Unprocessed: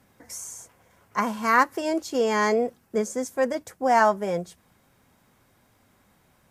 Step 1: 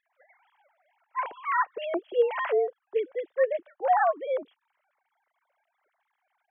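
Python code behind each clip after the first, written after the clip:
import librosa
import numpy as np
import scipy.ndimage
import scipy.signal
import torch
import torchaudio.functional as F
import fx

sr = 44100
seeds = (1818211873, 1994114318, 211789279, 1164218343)

y = fx.sine_speech(x, sr)
y = y * librosa.db_to_amplitude(-3.5)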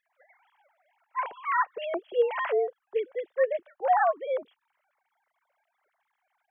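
y = fx.peak_eq(x, sr, hz=300.0, db=-7.5, octaves=0.5)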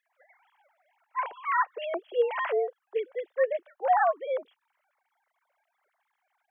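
y = scipy.signal.sosfilt(scipy.signal.butter(2, 350.0, 'highpass', fs=sr, output='sos'), x)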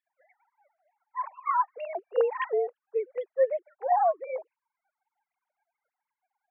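y = fx.sine_speech(x, sr)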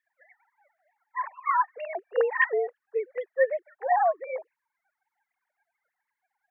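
y = fx.peak_eq(x, sr, hz=1800.0, db=14.5, octaves=0.45)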